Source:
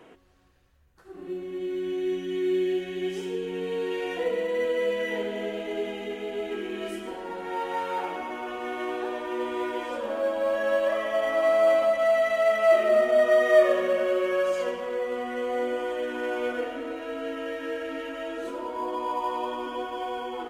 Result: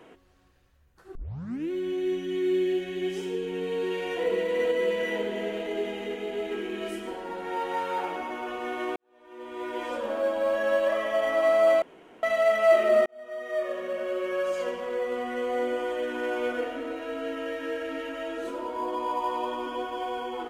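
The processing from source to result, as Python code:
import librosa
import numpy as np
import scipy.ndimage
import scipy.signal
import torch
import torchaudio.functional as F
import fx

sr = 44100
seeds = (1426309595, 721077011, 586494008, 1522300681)

y = fx.echo_throw(x, sr, start_s=3.35, length_s=0.88, ms=480, feedback_pct=70, wet_db=-6.5)
y = fx.edit(y, sr, fx.tape_start(start_s=1.15, length_s=0.56),
    fx.fade_in_span(start_s=8.96, length_s=0.9, curve='qua'),
    fx.room_tone_fill(start_s=11.82, length_s=0.41),
    fx.fade_in_span(start_s=13.06, length_s=1.97), tone=tone)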